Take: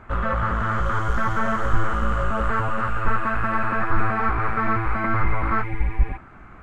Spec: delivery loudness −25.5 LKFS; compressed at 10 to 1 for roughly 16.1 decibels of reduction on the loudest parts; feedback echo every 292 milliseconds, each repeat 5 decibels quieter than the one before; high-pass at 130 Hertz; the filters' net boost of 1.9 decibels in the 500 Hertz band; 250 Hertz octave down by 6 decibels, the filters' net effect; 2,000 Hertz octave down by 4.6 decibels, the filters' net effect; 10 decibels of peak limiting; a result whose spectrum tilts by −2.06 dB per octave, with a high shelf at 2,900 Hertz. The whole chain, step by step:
high-pass filter 130 Hz
parametric band 250 Hz −8.5 dB
parametric band 500 Hz +5 dB
parametric band 2,000 Hz −4 dB
high-shelf EQ 2,900 Hz −8.5 dB
downward compressor 10 to 1, threshold −39 dBFS
brickwall limiter −38.5 dBFS
repeating echo 292 ms, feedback 56%, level −5 dB
level +19.5 dB

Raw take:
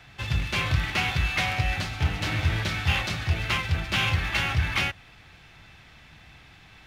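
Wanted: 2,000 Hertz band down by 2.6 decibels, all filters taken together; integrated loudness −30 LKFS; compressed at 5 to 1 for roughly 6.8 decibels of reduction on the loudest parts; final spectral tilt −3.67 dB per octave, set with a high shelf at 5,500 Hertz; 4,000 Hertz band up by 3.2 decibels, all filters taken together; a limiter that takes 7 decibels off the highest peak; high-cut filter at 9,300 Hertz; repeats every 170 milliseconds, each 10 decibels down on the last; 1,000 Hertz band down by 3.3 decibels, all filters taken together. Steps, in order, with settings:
low-pass filter 9,300 Hz
parametric band 1,000 Hz −3.5 dB
parametric band 2,000 Hz −5.5 dB
parametric band 4,000 Hz +5 dB
high-shelf EQ 5,500 Hz +5 dB
downward compressor 5 to 1, threshold −26 dBFS
brickwall limiter −22.5 dBFS
repeating echo 170 ms, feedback 32%, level −10 dB
level +1.5 dB

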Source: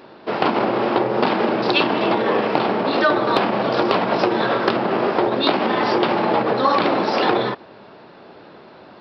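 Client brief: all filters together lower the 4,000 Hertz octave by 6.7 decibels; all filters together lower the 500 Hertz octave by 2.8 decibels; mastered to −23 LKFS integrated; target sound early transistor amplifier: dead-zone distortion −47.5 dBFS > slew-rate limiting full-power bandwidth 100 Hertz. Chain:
parametric band 500 Hz −3.5 dB
parametric band 4,000 Hz −8.5 dB
dead-zone distortion −47.5 dBFS
slew-rate limiting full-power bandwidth 100 Hz
level −0.5 dB

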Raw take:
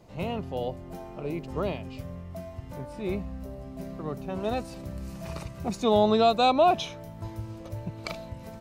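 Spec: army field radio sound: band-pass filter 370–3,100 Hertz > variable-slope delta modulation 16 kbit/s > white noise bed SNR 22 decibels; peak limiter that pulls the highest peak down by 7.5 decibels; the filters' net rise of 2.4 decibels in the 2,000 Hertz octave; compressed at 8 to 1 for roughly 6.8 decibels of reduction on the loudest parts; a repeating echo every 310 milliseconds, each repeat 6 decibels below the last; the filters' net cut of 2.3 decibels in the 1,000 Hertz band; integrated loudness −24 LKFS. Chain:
parametric band 1,000 Hz −4.5 dB
parametric band 2,000 Hz +6 dB
downward compressor 8 to 1, threshold −24 dBFS
brickwall limiter −23.5 dBFS
band-pass filter 370–3,100 Hz
repeating echo 310 ms, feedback 50%, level −6 dB
variable-slope delta modulation 16 kbit/s
white noise bed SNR 22 dB
level +15 dB

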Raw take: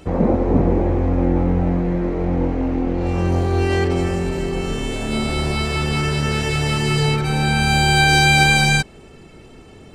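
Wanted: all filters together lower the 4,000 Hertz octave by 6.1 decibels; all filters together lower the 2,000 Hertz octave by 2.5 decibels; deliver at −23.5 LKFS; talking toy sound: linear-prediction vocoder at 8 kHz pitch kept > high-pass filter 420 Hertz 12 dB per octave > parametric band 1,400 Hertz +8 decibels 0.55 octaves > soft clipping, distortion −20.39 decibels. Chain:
parametric band 2,000 Hz −7.5 dB
parametric band 4,000 Hz −5.5 dB
linear-prediction vocoder at 8 kHz pitch kept
high-pass filter 420 Hz 12 dB per octave
parametric band 1,400 Hz +8 dB 0.55 octaves
soft clipping −12.5 dBFS
level +2 dB

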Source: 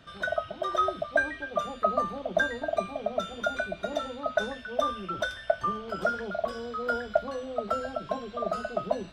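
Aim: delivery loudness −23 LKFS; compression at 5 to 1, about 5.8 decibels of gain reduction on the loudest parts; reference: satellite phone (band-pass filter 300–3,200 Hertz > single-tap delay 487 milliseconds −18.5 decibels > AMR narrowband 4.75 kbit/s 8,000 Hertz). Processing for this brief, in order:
downward compressor 5 to 1, threshold −27 dBFS
band-pass filter 300–3,200 Hz
single-tap delay 487 ms −18.5 dB
level +15 dB
AMR narrowband 4.75 kbit/s 8,000 Hz

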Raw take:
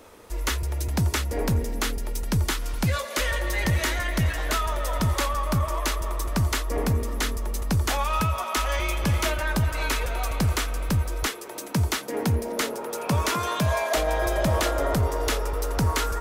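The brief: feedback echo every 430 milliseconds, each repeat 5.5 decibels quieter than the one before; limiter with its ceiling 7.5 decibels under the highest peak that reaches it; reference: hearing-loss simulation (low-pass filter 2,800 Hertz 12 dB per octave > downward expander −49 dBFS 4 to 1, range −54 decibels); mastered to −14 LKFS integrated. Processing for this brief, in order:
brickwall limiter −20.5 dBFS
low-pass filter 2,800 Hz 12 dB per octave
repeating echo 430 ms, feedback 53%, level −5.5 dB
downward expander −49 dBFS 4 to 1, range −54 dB
level +15.5 dB

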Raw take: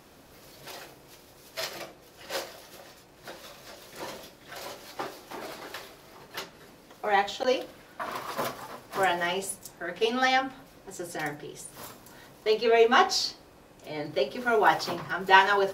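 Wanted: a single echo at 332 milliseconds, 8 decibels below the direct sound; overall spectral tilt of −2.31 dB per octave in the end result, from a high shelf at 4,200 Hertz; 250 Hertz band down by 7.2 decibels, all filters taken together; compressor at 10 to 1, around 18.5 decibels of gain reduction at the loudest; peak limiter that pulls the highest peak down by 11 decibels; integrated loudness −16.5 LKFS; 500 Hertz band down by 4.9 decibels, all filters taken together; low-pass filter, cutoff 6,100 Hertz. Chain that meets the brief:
low-pass filter 6,100 Hz
parametric band 250 Hz −8.5 dB
parametric band 500 Hz −3.5 dB
high-shelf EQ 4,200 Hz +3 dB
downward compressor 10 to 1, threshold −32 dBFS
brickwall limiter −31 dBFS
single-tap delay 332 ms −8 dB
level +25.5 dB

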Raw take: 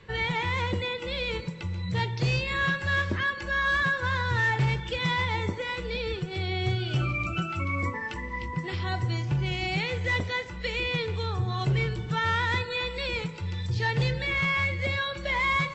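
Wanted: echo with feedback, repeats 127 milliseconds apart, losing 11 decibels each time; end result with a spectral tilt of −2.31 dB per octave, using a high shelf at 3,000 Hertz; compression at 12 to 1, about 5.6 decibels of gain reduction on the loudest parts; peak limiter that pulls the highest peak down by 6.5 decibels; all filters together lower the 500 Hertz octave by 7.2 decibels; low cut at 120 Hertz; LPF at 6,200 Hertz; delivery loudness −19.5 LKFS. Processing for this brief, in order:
high-pass filter 120 Hz
low-pass filter 6,200 Hz
parametric band 500 Hz −8.5 dB
high-shelf EQ 3,000 Hz +7 dB
downward compressor 12 to 1, threshold −27 dBFS
brickwall limiter −26 dBFS
repeating echo 127 ms, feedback 28%, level −11 dB
level +13.5 dB

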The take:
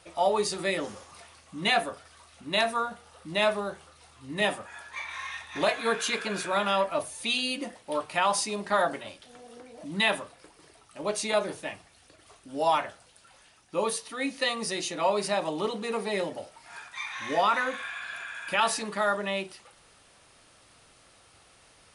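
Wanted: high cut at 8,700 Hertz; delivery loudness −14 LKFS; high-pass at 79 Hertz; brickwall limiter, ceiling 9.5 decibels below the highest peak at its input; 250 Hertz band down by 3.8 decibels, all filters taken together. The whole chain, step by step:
high-pass filter 79 Hz
low-pass filter 8,700 Hz
parametric band 250 Hz −5 dB
level +19 dB
brickwall limiter −2.5 dBFS

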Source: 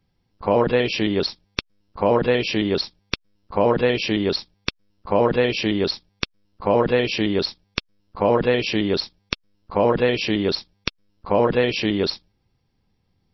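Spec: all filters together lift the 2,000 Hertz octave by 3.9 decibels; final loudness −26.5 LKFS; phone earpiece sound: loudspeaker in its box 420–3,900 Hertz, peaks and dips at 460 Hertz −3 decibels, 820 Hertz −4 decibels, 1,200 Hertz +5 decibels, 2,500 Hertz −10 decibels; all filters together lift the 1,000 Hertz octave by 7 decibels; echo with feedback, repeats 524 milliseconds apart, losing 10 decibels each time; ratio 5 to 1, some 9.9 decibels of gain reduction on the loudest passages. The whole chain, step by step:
parametric band 1,000 Hz +7.5 dB
parametric band 2,000 Hz +6.5 dB
downward compressor 5 to 1, threshold −21 dBFS
loudspeaker in its box 420–3,900 Hz, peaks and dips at 460 Hz −3 dB, 820 Hz −4 dB, 1,200 Hz +5 dB, 2,500 Hz −10 dB
repeating echo 524 ms, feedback 32%, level −10 dB
level +3 dB

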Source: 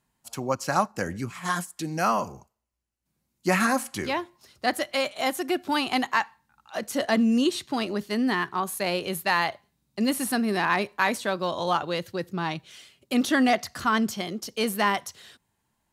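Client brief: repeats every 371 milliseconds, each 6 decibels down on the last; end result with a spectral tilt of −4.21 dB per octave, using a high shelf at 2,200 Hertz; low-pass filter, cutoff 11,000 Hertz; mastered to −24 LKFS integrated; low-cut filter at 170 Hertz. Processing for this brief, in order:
high-pass filter 170 Hz
low-pass filter 11,000 Hz
high-shelf EQ 2,200 Hz −3.5 dB
repeating echo 371 ms, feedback 50%, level −6 dB
level +3 dB

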